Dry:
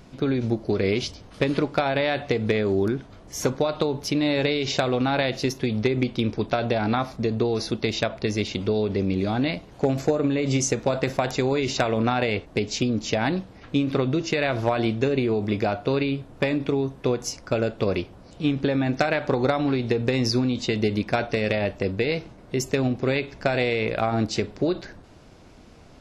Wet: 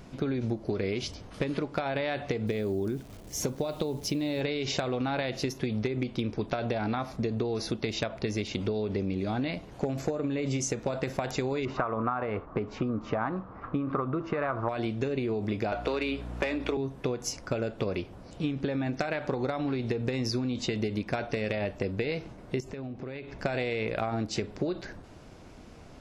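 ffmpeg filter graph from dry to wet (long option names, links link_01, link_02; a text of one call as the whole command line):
ffmpeg -i in.wav -filter_complex "[0:a]asettb=1/sr,asplit=3[link_01][link_02][link_03];[link_01]atrim=end=2.474[link_04];[link_02]atrim=start=2.47:end=4.41,asetpts=PTS-STARTPTS,afade=type=in:duration=0.004:curve=qsin,afade=type=out:start_time=1.936:duration=0.004:curve=qsin,acrusher=bits=9:dc=4:mix=0:aa=0.000001,equalizer=frequency=1400:width=0.83:gain=-7[link_05];[link_03]atrim=start=4.406[link_06];[link_04][link_05]acrossfade=duration=0.004:curve1=hsin:curve2=qsin[link_07];[link_07][link_06]acrossfade=duration=0.004:curve1=qsin:curve2=hsin,asettb=1/sr,asplit=3[link_08][link_09][link_10];[link_08]atrim=end=11.654[link_11];[link_09]atrim=start=11.65:end=14.69,asetpts=PTS-STARTPTS,afade=type=in:duration=0.004:curve=qsin,afade=type=out:start_time=3.036:duration=0.004:curve=qsin,lowpass=frequency=1200:width_type=q:width=5.8,aemphasis=mode=production:type=50fm[link_12];[link_10]atrim=start=14.686[link_13];[link_11][link_12]acrossfade=duration=0.004:curve1=hsin:curve2=qsin[link_14];[link_14][link_13]acrossfade=duration=0.004:curve1=qsin:curve2=hsin,asettb=1/sr,asplit=3[link_15][link_16][link_17];[link_15]atrim=end=15.724[link_18];[link_16]atrim=start=15.72:end=16.77,asetpts=PTS-STARTPTS,afade=type=in:duration=0.004:curve=qsin,afade=type=out:start_time=1.046:duration=0.004:curve=qsin,highpass=frequency=210:width=0.5412,highpass=frequency=210:width=1.3066,asplit=2[link_19][link_20];[link_20]highpass=frequency=720:poles=1,volume=13dB,asoftclip=type=tanh:threshold=-7.5dB[link_21];[link_19][link_21]amix=inputs=2:normalize=0,lowpass=frequency=6000:poles=1,volume=-6dB,aeval=exprs='val(0)+0.0158*(sin(2*PI*60*n/s)+sin(2*PI*2*60*n/s)/2+sin(2*PI*3*60*n/s)/3+sin(2*PI*4*60*n/s)/4+sin(2*PI*5*60*n/s)/5)':channel_layout=same[link_22];[link_17]atrim=start=16.766[link_23];[link_18][link_22]acrossfade=duration=0.004:curve1=hsin:curve2=qsin[link_24];[link_24][link_23]acrossfade=duration=0.004:curve1=qsin:curve2=hsin,asettb=1/sr,asplit=3[link_25][link_26][link_27];[link_25]atrim=end=22.604[link_28];[link_26]atrim=start=22.6:end=23.39,asetpts=PTS-STARTPTS,afade=type=in:duration=0.004:curve=qsin,afade=type=out:start_time=0.786:duration=0.004:curve=qsin,aemphasis=mode=reproduction:type=50fm,acompressor=threshold=-36dB:ratio=6:attack=3.2:release=140:knee=1:detection=peak[link_29];[link_27]atrim=start=23.386[link_30];[link_28][link_29]acrossfade=duration=0.004:curve1=hsin:curve2=qsin[link_31];[link_31][link_30]acrossfade=duration=0.004:curve1=qsin:curve2=hsin,equalizer=frequency=4100:width=1.5:gain=-2.5,acompressor=threshold=-27dB:ratio=6" out.wav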